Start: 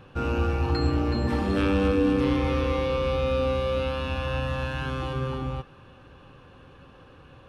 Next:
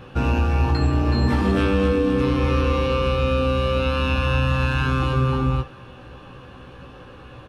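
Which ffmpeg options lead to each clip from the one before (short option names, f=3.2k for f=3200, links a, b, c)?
-filter_complex "[0:a]acompressor=threshold=-24dB:ratio=6,asplit=2[a][b];[b]aecho=0:1:16|69:0.631|0.133[c];[a][c]amix=inputs=2:normalize=0,volume=7dB"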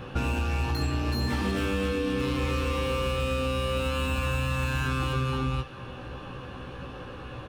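-filter_complex "[0:a]acrossover=split=1900[a][b];[a]acompressor=threshold=-29dB:ratio=4[c];[b]asoftclip=type=hard:threshold=-38dB[d];[c][d]amix=inputs=2:normalize=0,volume=2dB"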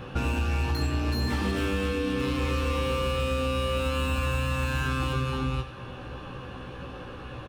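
-af "aecho=1:1:95:0.211"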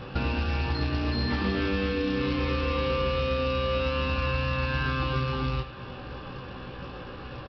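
-filter_complex "[0:a]aresample=11025,acrusher=bits=4:mode=log:mix=0:aa=0.000001,aresample=44100,asplit=2[a][b];[b]adelay=21,volume=-13dB[c];[a][c]amix=inputs=2:normalize=0"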